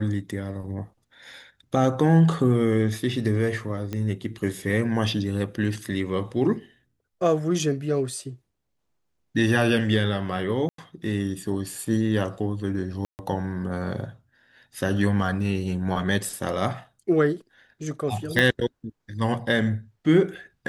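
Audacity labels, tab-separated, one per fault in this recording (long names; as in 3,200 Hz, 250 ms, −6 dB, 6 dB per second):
3.930000	3.930000	click −17 dBFS
10.690000	10.780000	drop-out 93 ms
13.050000	13.190000	drop-out 139 ms
18.390000	18.390000	click −8 dBFS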